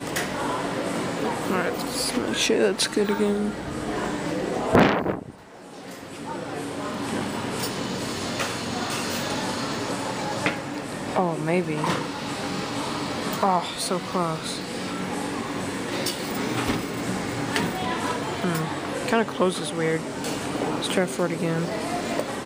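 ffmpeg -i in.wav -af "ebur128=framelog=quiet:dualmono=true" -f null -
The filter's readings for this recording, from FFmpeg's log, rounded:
Integrated loudness:
  I:         -23.1 LUFS
  Threshold: -33.2 LUFS
Loudness range:
  LRA:         3.8 LU
  Threshold: -43.2 LUFS
  LRA low:   -25.0 LUFS
  LRA high:  -21.2 LUFS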